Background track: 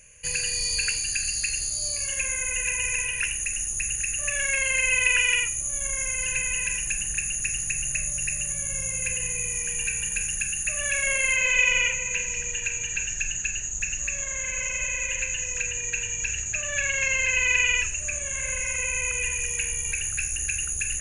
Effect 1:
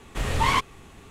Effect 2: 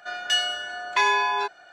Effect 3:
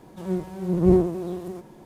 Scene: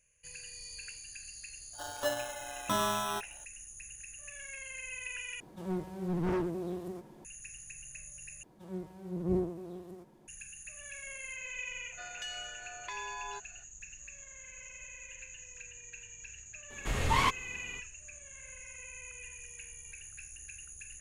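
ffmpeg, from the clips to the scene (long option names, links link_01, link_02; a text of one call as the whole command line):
ffmpeg -i bed.wav -i cue0.wav -i cue1.wav -i cue2.wav -filter_complex "[2:a]asplit=2[link_01][link_02];[3:a]asplit=2[link_03][link_04];[0:a]volume=-20dB[link_05];[link_01]acrusher=samples=19:mix=1:aa=0.000001[link_06];[link_03]asoftclip=type=hard:threshold=-22.5dB[link_07];[link_02]acompressor=threshold=-24dB:ratio=6:attack=3.2:release=140:knee=1:detection=peak[link_08];[link_05]asplit=3[link_09][link_10][link_11];[link_09]atrim=end=5.404[link_12];[link_07]atrim=end=1.85,asetpts=PTS-STARTPTS,volume=-6.5dB[link_13];[link_10]atrim=start=7.246:end=8.434[link_14];[link_04]atrim=end=1.85,asetpts=PTS-STARTPTS,volume=-13.5dB[link_15];[link_11]atrim=start=10.276[link_16];[link_06]atrim=end=1.72,asetpts=PTS-STARTPTS,volume=-10dB,afade=type=in:duration=0.004:curve=hsin,afade=type=out:start_time=1.716:duration=0.004:curve=hsin,adelay=1730[link_17];[link_08]atrim=end=1.72,asetpts=PTS-STARTPTS,volume=-13.5dB,afade=type=in:duration=0.004:curve=hsin,afade=type=out:start_time=1.716:duration=0.004:curve=hsin,adelay=11920[link_18];[1:a]atrim=end=1.1,asetpts=PTS-STARTPTS,volume=-5.5dB,afade=type=in:duration=0.004:curve=hsin,afade=type=out:start_time=1.096:duration=0.004:curve=hsin,adelay=16700[link_19];[link_12][link_13]acrossfade=duration=0.004:curve1=hsin:curve2=hsin[link_20];[link_20][link_14]acrossfade=duration=0.004:curve1=hsin:curve2=hsin[link_21];[link_21][link_15]acrossfade=duration=0.004:curve1=hsin:curve2=hsin[link_22];[link_22][link_16]acrossfade=duration=0.004:curve1=hsin:curve2=hsin[link_23];[link_23][link_17][link_18][link_19]amix=inputs=4:normalize=0" out.wav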